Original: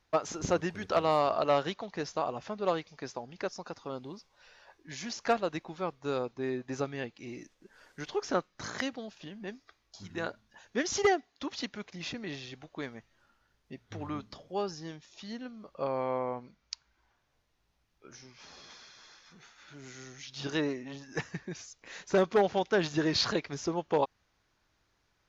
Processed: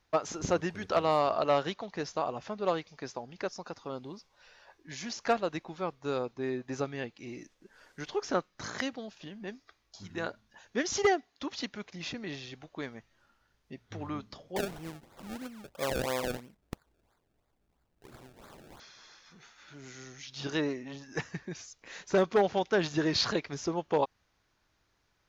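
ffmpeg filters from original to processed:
ffmpeg -i in.wav -filter_complex "[0:a]asettb=1/sr,asplit=3[link_01][link_02][link_03];[link_01]atrim=end=14.564[link_04];[link_02]atrim=start=14.56:end=18.8,asetpts=PTS-STARTPTS,afade=type=in:duration=0.004:curve=qsin,afade=type=out:start_time=4.236:duration=0.004:curve=qsin,acrusher=samples=30:mix=1:aa=0.000001:lfo=1:lforange=30:lforate=3[link_05];[link_03]atrim=start=18.796[link_06];[link_04][link_05]acrossfade=duration=0.004:curve1=hsin:curve2=qsin[link_07];[link_07][link_06]acrossfade=duration=0.004:curve1=qsin:curve2=hsin" out.wav

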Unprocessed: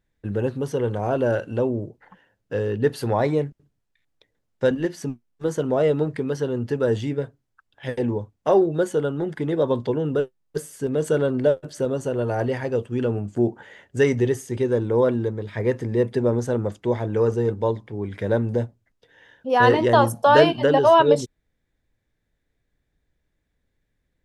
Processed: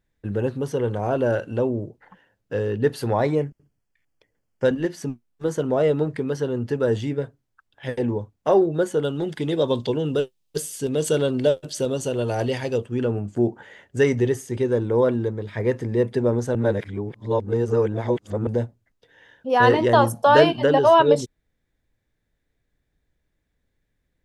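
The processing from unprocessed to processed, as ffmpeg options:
ffmpeg -i in.wav -filter_complex "[0:a]asettb=1/sr,asplit=3[link_01][link_02][link_03];[link_01]atrim=end=3.354[link_04];[link_02]atrim=start=3.35:end=4.65,asetpts=PTS-STARTPTS,afade=type=in:duration=0.004:curve=qsin,afade=type=out:start_time=1.296:duration=0.004:curve=qsin,asuperstop=centerf=3800:order=4:qfactor=4.3[link_05];[link_03]atrim=start=4.646[link_06];[link_04][link_05]acrossfade=duration=0.004:curve1=hsin:curve2=qsin[link_07];[link_07][link_06]acrossfade=duration=0.004:curve1=qsin:curve2=hsin,asettb=1/sr,asplit=3[link_08][link_09][link_10];[link_08]atrim=end=9.034[link_11];[link_09]atrim=start=9.03:end=12.78,asetpts=PTS-STARTPTS,afade=type=in:duration=0.004:curve=qsin,afade=type=out:start_time=3.746:duration=0.004:curve=qsin,highshelf=frequency=2300:width_type=q:width=1.5:gain=8[link_12];[link_10]atrim=start=12.776[link_13];[link_11][link_12]acrossfade=duration=0.004:curve1=hsin:curve2=qsin[link_14];[link_14][link_13]acrossfade=duration=0.004:curve1=qsin:curve2=hsin,asplit=3[link_15][link_16][link_17];[link_15]atrim=end=16.552[link_18];[link_16]atrim=start=16.548:end=18.472,asetpts=PTS-STARTPTS,areverse[link_19];[link_17]atrim=start=18.468[link_20];[link_18][link_19]acrossfade=duration=0.004:curve1=hsin:curve2=hsin[link_21];[link_21][link_20]acrossfade=duration=0.004:curve1=hsin:curve2=hsin" out.wav

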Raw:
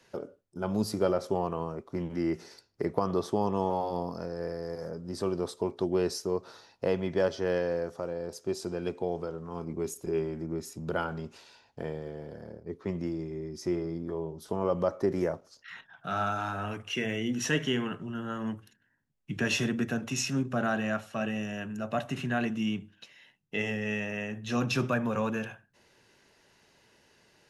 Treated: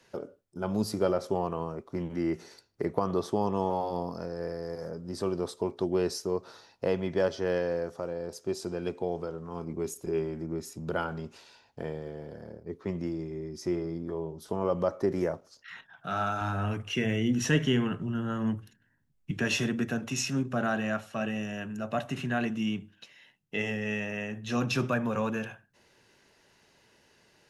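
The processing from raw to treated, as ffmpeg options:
ffmpeg -i in.wav -filter_complex "[0:a]asettb=1/sr,asplit=3[link_01][link_02][link_03];[link_01]atrim=end=2.034[link_04];[link_02]atrim=start=2.03:end=3.19,asetpts=PTS-STARTPTS,afade=type=in:duration=0.004:curve=qsin,afade=type=out:start_time=1.156:duration=0.004:curve=qsin,bandreject=frequency=5100:width=10[link_05];[link_03]atrim=start=3.186[link_06];[link_04][link_05]acrossfade=duration=0.004:curve1=hsin:curve2=qsin[link_07];[link_07][link_06]acrossfade=duration=0.004:curve1=qsin:curve2=hsin,asettb=1/sr,asplit=3[link_08][link_09][link_10];[link_08]atrim=end=16.414[link_11];[link_09]atrim=start=16.41:end=19.31,asetpts=PTS-STARTPTS,afade=type=in:duration=0.004:curve=qsin,afade=type=out:start_time=2.896:duration=0.004:curve=qsin,lowshelf=frequency=200:gain=10.5[link_12];[link_10]atrim=start=19.306[link_13];[link_11][link_12]acrossfade=duration=0.004:curve1=hsin:curve2=qsin[link_14];[link_14][link_13]acrossfade=duration=0.004:curve1=qsin:curve2=hsin" out.wav

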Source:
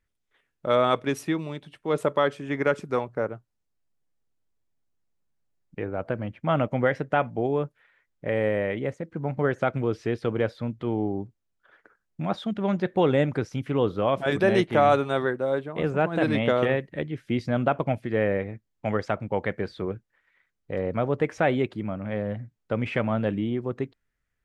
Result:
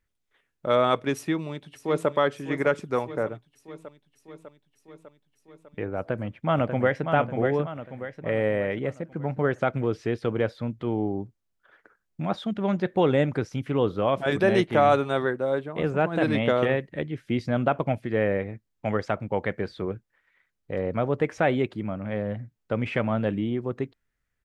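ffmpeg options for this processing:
ffmpeg -i in.wav -filter_complex "[0:a]asplit=2[link_01][link_02];[link_02]afade=type=in:start_time=1.15:duration=0.01,afade=type=out:start_time=2.08:duration=0.01,aecho=0:1:600|1200|1800|2400|3000|3600|4200|4800|5400|6000:0.251189|0.175832|0.123082|0.0861577|0.0603104|0.0422173|0.0295521|0.0206865|0.0144805|0.0101364[link_03];[link_01][link_03]amix=inputs=2:normalize=0,asplit=2[link_04][link_05];[link_05]afade=type=in:start_time=5.98:duration=0.01,afade=type=out:start_time=7.06:duration=0.01,aecho=0:1:590|1180|1770|2360|2950:0.501187|0.225534|0.10149|0.0456707|0.0205518[link_06];[link_04][link_06]amix=inputs=2:normalize=0" out.wav

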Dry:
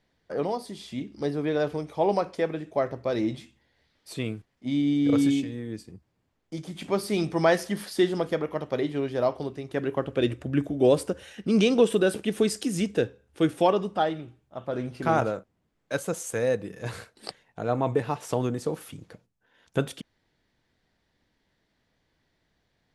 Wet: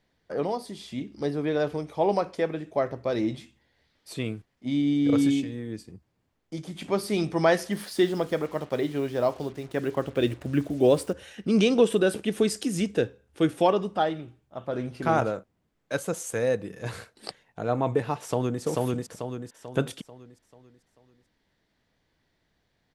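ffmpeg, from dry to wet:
ffmpeg -i in.wav -filter_complex "[0:a]asettb=1/sr,asplit=3[link_01][link_02][link_03];[link_01]atrim=end=7.724[link_04];[link_02]atrim=start=7.72:end=11.13,asetpts=PTS-STARTPTS,afade=type=in:duration=0.004:curve=qsin,afade=type=out:start_time=3.406:duration=0.004:curve=qsin,acrusher=bits=7:mix=0:aa=0.5[link_05];[link_03]atrim=start=11.126[link_06];[link_04][link_05]acrossfade=duration=0.004:curve1=hsin:curve2=qsin[link_07];[link_07][link_06]acrossfade=duration=0.004:curve1=qsin:curve2=hsin,asplit=2[link_08][link_09];[link_09]afade=type=in:start_time=18.22:duration=0.01,afade=type=out:start_time=18.62:duration=0.01,aecho=0:1:440|880|1320|1760|2200|2640:0.944061|0.424827|0.191172|0.0860275|0.0387124|0.0174206[link_10];[link_08][link_10]amix=inputs=2:normalize=0" out.wav

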